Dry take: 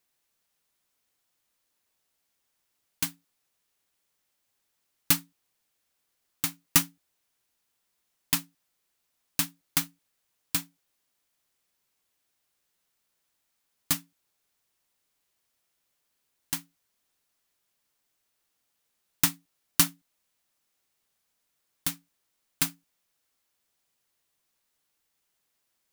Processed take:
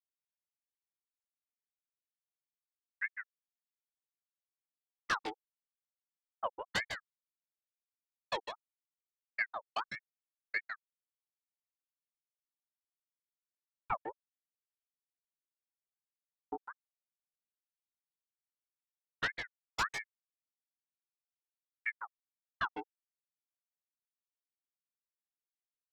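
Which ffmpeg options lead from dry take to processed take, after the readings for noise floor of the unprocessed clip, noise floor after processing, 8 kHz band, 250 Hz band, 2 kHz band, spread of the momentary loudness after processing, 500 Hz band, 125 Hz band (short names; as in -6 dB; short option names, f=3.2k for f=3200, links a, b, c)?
-78 dBFS, under -85 dBFS, -24.5 dB, -15.5 dB, +1.0 dB, 14 LU, +6.5 dB, -17.0 dB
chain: -filter_complex "[0:a]acrossover=split=4900[a][b];[b]acompressor=threshold=-26dB:ratio=4:attack=1:release=60[c];[a][c]amix=inputs=2:normalize=0,afftfilt=real='re*gte(hypot(re,im),0.112)':imag='im*gte(hypot(re,im),0.112)':win_size=1024:overlap=0.75,agate=range=-33dB:threshold=-59dB:ratio=3:detection=peak,highshelf=f=8.9k:g=4,alimiter=limit=-17.5dB:level=0:latency=1:release=125,acompressor=mode=upward:threshold=-33dB:ratio=2.5,asoftclip=type=tanh:threshold=-29.5dB,flanger=delay=16.5:depth=2.9:speed=2.2,aecho=1:1:153:0.422,aeval=exprs='val(0)*sin(2*PI*1300*n/s+1300*0.55/1.6*sin(2*PI*1.6*n/s))':c=same,volume=9.5dB"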